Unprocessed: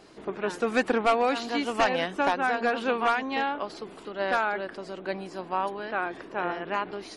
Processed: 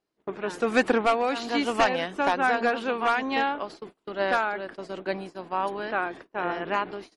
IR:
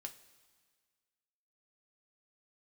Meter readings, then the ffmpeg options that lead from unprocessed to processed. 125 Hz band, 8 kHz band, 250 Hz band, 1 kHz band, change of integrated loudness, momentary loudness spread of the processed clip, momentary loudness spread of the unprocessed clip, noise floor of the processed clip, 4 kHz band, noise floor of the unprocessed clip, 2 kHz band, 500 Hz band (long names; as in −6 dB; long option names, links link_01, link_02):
+1.0 dB, +1.0 dB, +1.5 dB, +1.0 dB, +1.5 dB, 12 LU, 11 LU, −76 dBFS, +1.0 dB, −46 dBFS, +1.5 dB, +1.0 dB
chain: -af "agate=range=-33dB:threshold=-39dB:ratio=16:detection=peak,tremolo=f=1.2:d=0.4,volume=3dB"